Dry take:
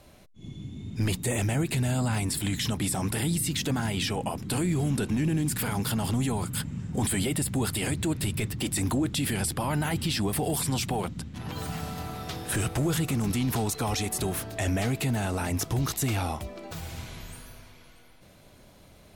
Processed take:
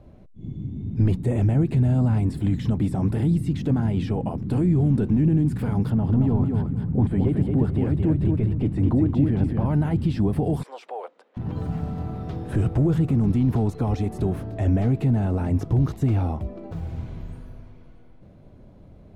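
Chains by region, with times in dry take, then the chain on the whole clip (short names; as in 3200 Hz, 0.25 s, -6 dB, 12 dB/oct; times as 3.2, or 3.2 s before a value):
5.9–9.66 LPF 1700 Hz 6 dB/oct + feedback echo 0.223 s, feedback 25%, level -4 dB
10.63–11.37 elliptic high-pass 490 Hz, stop band 80 dB + high shelf 6800 Hz -11.5 dB
whole clip: LPF 1800 Hz 6 dB/oct; tilt shelf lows +8.5 dB, about 750 Hz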